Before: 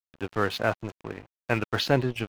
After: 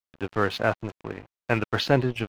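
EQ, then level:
high-shelf EQ 6,300 Hz −7.5 dB
+2.0 dB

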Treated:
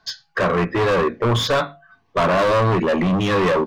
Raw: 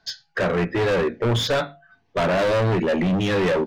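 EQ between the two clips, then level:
parametric band 1,100 Hz +11.5 dB 0.27 octaves
+2.0 dB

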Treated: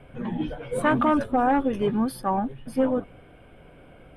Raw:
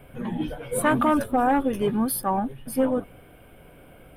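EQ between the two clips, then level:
high-frequency loss of the air 82 metres
0.0 dB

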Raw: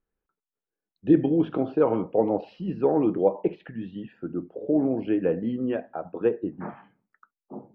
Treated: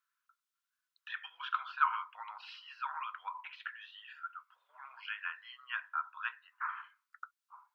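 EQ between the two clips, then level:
Chebyshev high-pass with heavy ripple 990 Hz, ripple 3 dB
parametric band 1,400 Hz +5.5 dB 0.3 octaves
+6.5 dB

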